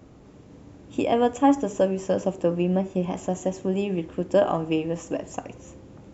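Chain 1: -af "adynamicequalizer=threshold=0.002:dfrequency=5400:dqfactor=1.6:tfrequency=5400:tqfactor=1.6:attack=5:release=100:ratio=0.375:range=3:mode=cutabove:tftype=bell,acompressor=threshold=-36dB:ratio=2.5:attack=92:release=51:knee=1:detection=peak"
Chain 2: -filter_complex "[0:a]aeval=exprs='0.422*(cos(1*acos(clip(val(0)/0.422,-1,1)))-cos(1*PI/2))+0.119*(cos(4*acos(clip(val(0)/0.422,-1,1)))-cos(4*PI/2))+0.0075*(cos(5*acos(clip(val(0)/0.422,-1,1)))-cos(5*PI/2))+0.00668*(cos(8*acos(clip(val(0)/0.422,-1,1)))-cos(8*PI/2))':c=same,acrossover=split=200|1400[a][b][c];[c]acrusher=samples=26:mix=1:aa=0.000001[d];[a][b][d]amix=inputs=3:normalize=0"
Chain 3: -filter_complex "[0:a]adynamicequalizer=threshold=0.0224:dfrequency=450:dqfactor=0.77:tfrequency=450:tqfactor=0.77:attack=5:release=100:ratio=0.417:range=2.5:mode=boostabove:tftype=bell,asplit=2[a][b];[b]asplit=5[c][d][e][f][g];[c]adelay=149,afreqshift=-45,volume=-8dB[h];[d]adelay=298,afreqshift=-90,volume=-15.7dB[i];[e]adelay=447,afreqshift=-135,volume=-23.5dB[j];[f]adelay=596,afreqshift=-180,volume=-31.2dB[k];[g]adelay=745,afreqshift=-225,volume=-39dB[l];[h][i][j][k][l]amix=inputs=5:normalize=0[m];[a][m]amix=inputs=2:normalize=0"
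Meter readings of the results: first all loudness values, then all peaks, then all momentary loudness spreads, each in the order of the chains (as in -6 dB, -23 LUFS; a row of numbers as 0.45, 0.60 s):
-31.0, -25.0, -20.5 LUFS; -11.0, -6.0, -3.5 dBFS; 18, 12, 11 LU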